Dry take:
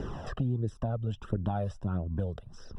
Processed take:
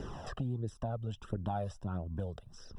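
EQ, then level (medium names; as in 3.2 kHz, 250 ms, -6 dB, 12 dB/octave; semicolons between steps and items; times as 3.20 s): treble shelf 3.6 kHz +9.5 dB; dynamic bell 830 Hz, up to +5 dB, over -48 dBFS, Q 1.5; -6.0 dB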